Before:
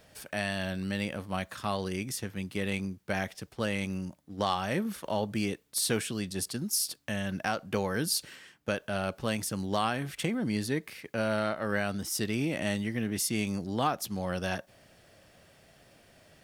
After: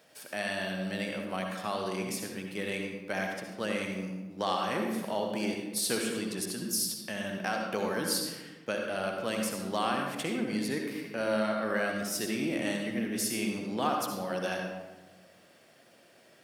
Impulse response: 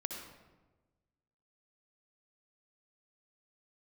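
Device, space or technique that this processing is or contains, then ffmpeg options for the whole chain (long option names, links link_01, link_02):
bathroom: -filter_complex "[0:a]highpass=220[link_01];[1:a]atrim=start_sample=2205[link_02];[link_01][link_02]afir=irnorm=-1:irlink=0"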